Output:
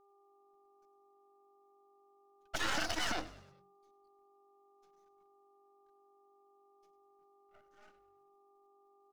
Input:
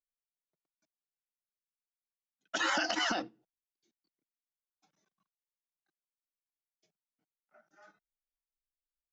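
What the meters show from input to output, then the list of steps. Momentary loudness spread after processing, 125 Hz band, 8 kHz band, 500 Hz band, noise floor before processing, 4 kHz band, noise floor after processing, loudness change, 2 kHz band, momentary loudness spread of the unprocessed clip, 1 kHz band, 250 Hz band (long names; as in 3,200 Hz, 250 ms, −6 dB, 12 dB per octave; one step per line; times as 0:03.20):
10 LU, +6.0 dB, −2.0 dB, −4.5 dB, below −85 dBFS, −4.0 dB, −68 dBFS, −5.0 dB, −5.0 dB, 10 LU, −5.0 dB, −5.5 dB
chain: half-wave rectification
hum with harmonics 400 Hz, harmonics 3, −68 dBFS −3 dB per octave
echo with shifted repeats 100 ms, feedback 51%, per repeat −47 Hz, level −17.5 dB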